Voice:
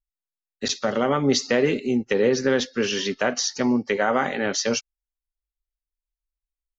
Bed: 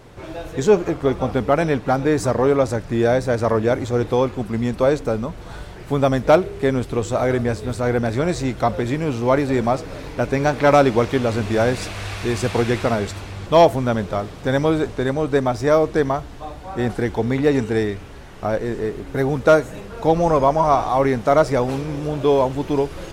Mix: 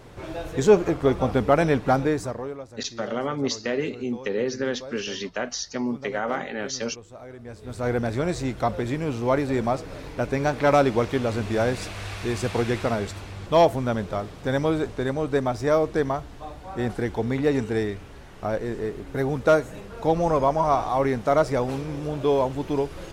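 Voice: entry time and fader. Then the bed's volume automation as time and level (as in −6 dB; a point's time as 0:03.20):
2.15 s, −6.0 dB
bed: 0:01.98 −1.5 dB
0:02.67 −22.5 dB
0:07.37 −22.5 dB
0:07.86 −5 dB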